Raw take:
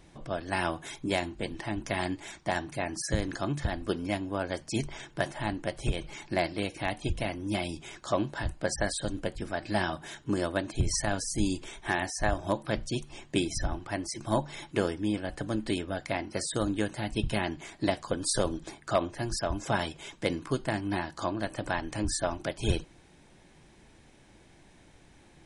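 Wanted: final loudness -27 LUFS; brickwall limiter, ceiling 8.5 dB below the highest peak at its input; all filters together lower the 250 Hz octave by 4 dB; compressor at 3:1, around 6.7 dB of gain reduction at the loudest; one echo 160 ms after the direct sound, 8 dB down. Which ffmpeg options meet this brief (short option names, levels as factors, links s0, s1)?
-af "equalizer=f=250:t=o:g=-5.5,acompressor=threshold=0.0251:ratio=3,alimiter=level_in=1.19:limit=0.0631:level=0:latency=1,volume=0.841,aecho=1:1:160:0.398,volume=3.76"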